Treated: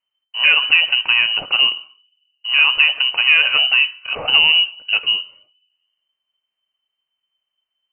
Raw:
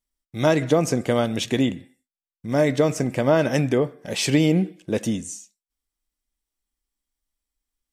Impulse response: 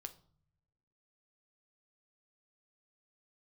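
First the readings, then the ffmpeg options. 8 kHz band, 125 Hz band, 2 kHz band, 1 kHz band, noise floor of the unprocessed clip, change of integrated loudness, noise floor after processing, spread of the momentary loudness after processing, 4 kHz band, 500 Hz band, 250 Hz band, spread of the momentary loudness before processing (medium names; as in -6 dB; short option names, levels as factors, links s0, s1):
under -40 dB, under -25 dB, +18.0 dB, +0.5 dB, under -85 dBFS, +8.5 dB, -81 dBFS, 8 LU, +20.5 dB, -16.5 dB, under -25 dB, 10 LU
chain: -filter_complex "[0:a]acontrast=82,asplit=2[s0][s1];[1:a]atrim=start_sample=2205[s2];[s1][s2]afir=irnorm=-1:irlink=0,volume=0.355[s3];[s0][s3]amix=inputs=2:normalize=0,lowpass=f=2600:t=q:w=0.5098,lowpass=f=2600:t=q:w=0.6013,lowpass=f=2600:t=q:w=0.9,lowpass=f=2600:t=q:w=2.563,afreqshift=-3100,volume=0.75"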